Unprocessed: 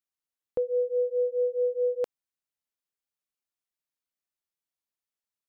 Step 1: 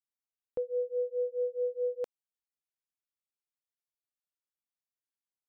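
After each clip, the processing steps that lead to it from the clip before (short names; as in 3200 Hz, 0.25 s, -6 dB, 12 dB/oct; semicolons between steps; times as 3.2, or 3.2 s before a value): upward expander 1.5:1, over -35 dBFS; gain -5 dB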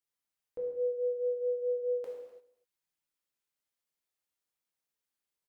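limiter -36 dBFS, peak gain reduction 10.5 dB; echo 0.251 s -21.5 dB; non-linear reverb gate 0.37 s falling, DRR -4 dB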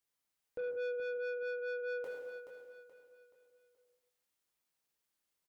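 soft clip -38.5 dBFS, distortion -8 dB; on a send: feedback echo 0.427 s, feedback 39%, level -9 dB; on the sum: gain +3 dB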